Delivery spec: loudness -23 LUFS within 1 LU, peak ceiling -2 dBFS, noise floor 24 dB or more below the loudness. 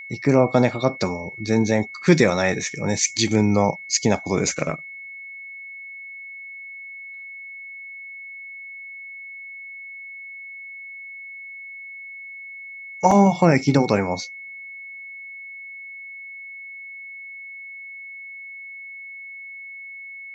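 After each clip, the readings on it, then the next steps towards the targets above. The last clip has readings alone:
dropouts 1; longest dropout 4.2 ms; steady tone 2200 Hz; tone level -35 dBFS; loudness -20.0 LUFS; peak -2.0 dBFS; loudness target -23.0 LUFS
-> interpolate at 13.11, 4.2 ms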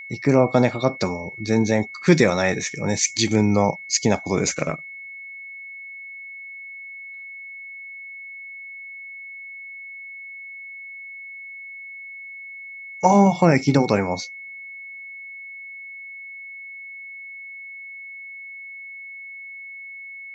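dropouts 0; steady tone 2200 Hz; tone level -35 dBFS
-> notch 2200 Hz, Q 30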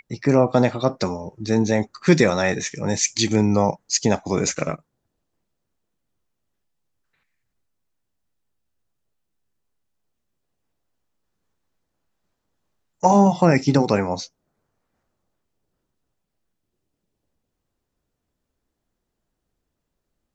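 steady tone none; loudness -20.0 LUFS; peak -2.0 dBFS; loudness target -23.0 LUFS
-> gain -3 dB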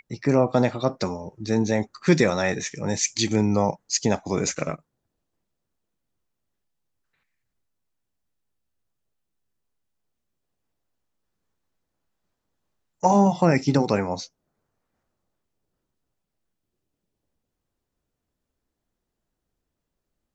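loudness -23.0 LUFS; peak -5.0 dBFS; noise floor -82 dBFS

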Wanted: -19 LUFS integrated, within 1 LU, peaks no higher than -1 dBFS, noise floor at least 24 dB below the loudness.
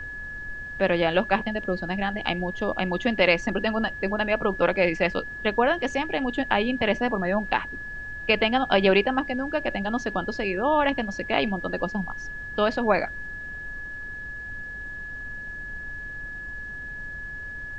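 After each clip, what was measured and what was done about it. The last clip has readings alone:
steady tone 1700 Hz; tone level -34 dBFS; noise floor -36 dBFS; noise floor target -50 dBFS; loudness -26.0 LUFS; peak -5.0 dBFS; loudness target -19.0 LUFS
-> notch 1700 Hz, Q 30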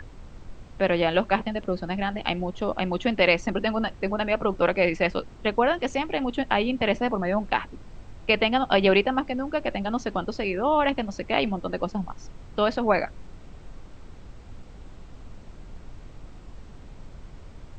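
steady tone none; noise floor -45 dBFS; noise floor target -49 dBFS
-> noise print and reduce 6 dB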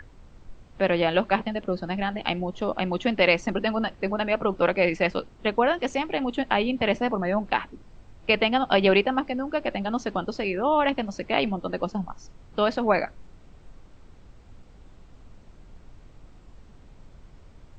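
noise floor -51 dBFS; loudness -25.0 LUFS; peak -5.5 dBFS; loudness target -19.0 LUFS
-> gain +6 dB; limiter -1 dBFS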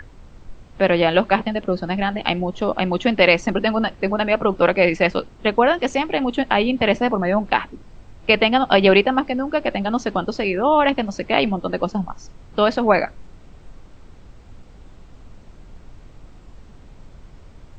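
loudness -19.0 LUFS; peak -1.0 dBFS; noise floor -45 dBFS

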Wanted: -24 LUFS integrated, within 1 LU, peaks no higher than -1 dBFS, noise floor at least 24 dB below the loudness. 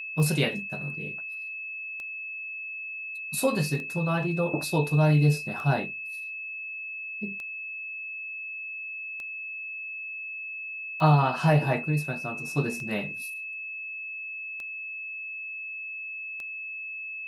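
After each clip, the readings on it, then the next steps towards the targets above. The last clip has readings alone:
clicks 10; steady tone 2600 Hz; tone level -34 dBFS; loudness -29.0 LUFS; peak -10.0 dBFS; loudness target -24.0 LUFS
-> de-click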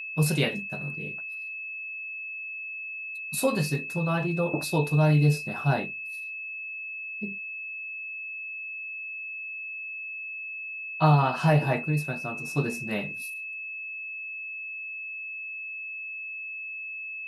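clicks 0; steady tone 2600 Hz; tone level -34 dBFS
-> notch 2600 Hz, Q 30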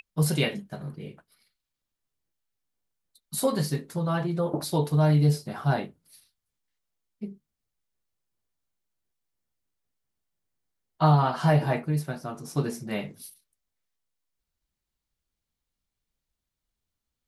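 steady tone none; loudness -26.0 LUFS; peak -10.0 dBFS; loudness target -24.0 LUFS
-> gain +2 dB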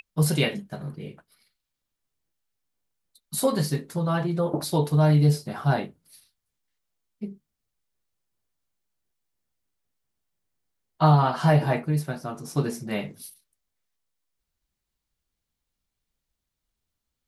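loudness -24.0 LUFS; peak -8.0 dBFS; noise floor -83 dBFS

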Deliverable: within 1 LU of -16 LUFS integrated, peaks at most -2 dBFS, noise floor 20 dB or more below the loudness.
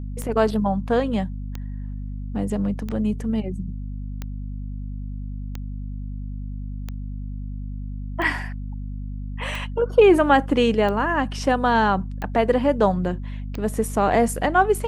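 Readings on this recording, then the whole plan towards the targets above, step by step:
clicks 11; hum 50 Hz; harmonics up to 250 Hz; hum level -28 dBFS; loudness -22.0 LUFS; peak -4.5 dBFS; loudness target -16.0 LUFS
-> de-click; de-hum 50 Hz, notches 5; gain +6 dB; limiter -2 dBFS

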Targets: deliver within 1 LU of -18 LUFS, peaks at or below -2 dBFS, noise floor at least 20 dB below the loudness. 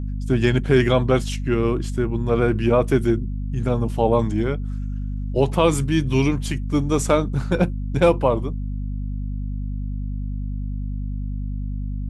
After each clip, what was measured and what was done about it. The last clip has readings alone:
hum 50 Hz; harmonics up to 250 Hz; hum level -24 dBFS; loudness -22.0 LUFS; peak -4.0 dBFS; loudness target -18.0 LUFS
-> de-hum 50 Hz, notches 5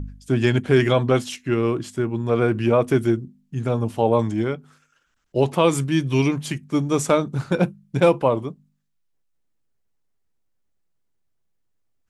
hum none; loudness -21.5 LUFS; peak -4.0 dBFS; loudness target -18.0 LUFS
-> gain +3.5 dB; limiter -2 dBFS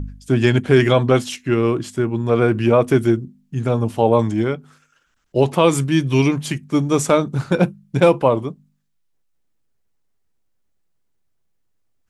loudness -18.0 LUFS; peak -2.0 dBFS; noise floor -66 dBFS

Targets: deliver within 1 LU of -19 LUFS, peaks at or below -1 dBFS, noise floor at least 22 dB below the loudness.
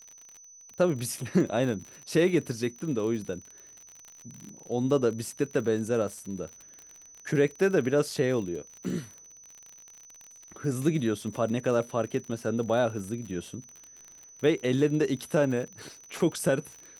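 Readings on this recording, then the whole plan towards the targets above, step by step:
ticks 47/s; steady tone 6000 Hz; tone level -49 dBFS; loudness -28.5 LUFS; peak -11.0 dBFS; loudness target -19.0 LUFS
-> de-click; notch 6000 Hz, Q 30; gain +9.5 dB

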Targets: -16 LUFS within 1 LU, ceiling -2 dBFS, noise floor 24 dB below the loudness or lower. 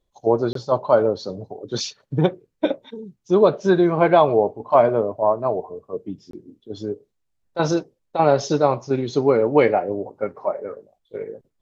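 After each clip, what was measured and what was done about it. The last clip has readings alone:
dropouts 2; longest dropout 23 ms; loudness -20.5 LUFS; peak -3.0 dBFS; loudness target -16.0 LUFS
-> interpolate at 0.53/6.31, 23 ms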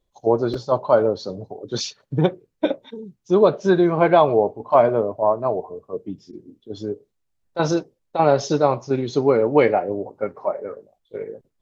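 dropouts 0; loudness -20.5 LUFS; peak -3.0 dBFS; loudness target -16.0 LUFS
-> gain +4.5 dB; limiter -2 dBFS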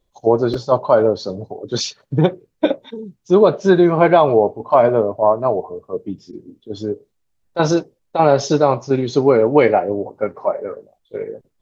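loudness -16.5 LUFS; peak -2.0 dBFS; noise floor -68 dBFS

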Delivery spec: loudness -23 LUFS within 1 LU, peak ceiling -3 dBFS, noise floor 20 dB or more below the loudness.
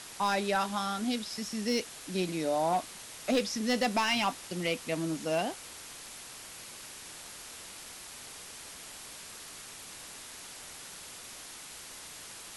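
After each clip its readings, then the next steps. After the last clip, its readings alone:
clipped 0.2%; flat tops at -21.0 dBFS; noise floor -47 dBFS; noise floor target -55 dBFS; loudness -34.5 LUFS; peak -21.0 dBFS; loudness target -23.0 LUFS
-> clip repair -21 dBFS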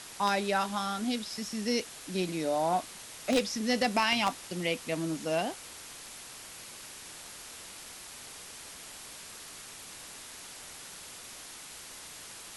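clipped 0.0%; noise floor -47 dBFS; noise floor target -54 dBFS
-> denoiser 7 dB, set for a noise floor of -47 dBFS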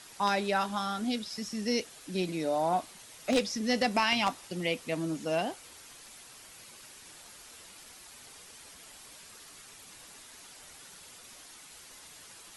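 noise floor -52 dBFS; loudness -31.0 LUFS; peak -12.0 dBFS; loudness target -23.0 LUFS
-> gain +8 dB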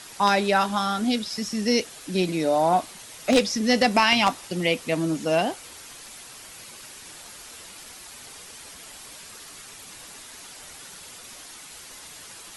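loudness -23.0 LUFS; peak -4.0 dBFS; noise floor -44 dBFS

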